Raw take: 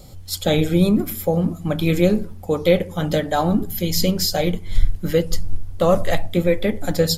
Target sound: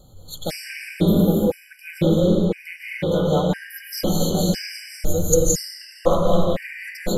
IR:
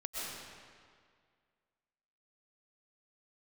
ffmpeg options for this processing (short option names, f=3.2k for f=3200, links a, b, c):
-filter_complex "[0:a]asplit=3[a][b][c];[a]afade=t=out:st=4.49:d=0.02[d];[b]highshelf=f=4.5k:t=q:w=3:g=12.5,afade=t=in:st=4.49:d=0.02,afade=t=out:st=5.34:d=0.02[e];[c]afade=t=in:st=5.34:d=0.02[f];[d][e][f]amix=inputs=3:normalize=0[g];[1:a]atrim=start_sample=2205,asetrate=33516,aresample=44100[h];[g][h]afir=irnorm=-1:irlink=0,afftfilt=real='re*gt(sin(2*PI*0.99*pts/sr)*(1-2*mod(floor(b*sr/1024/1500),2)),0)':imag='im*gt(sin(2*PI*0.99*pts/sr)*(1-2*mod(floor(b*sr/1024/1500),2)),0)':win_size=1024:overlap=0.75,volume=-3.5dB"